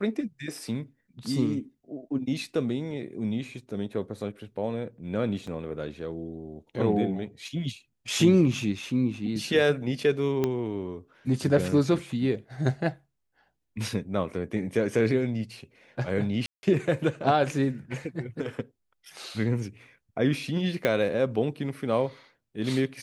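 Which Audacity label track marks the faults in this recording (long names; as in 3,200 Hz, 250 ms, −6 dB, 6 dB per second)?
5.470000	5.470000	drop-out 4.1 ms
10.440000	10.440000	click −13 dBFS
16.460000	16.630000	drop-out 170 ms
20.850000	20.850000	click −12 dBFS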